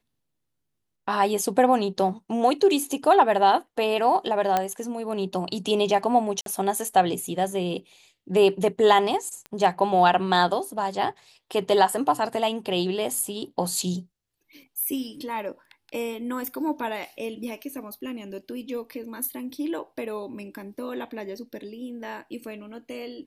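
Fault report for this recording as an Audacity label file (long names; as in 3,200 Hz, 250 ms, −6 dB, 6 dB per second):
4.570000	4.570000	click −9 dBFS
6.410000	6.460000	drop-out 52 ms
9.460000	9.460000	click −23 dBFS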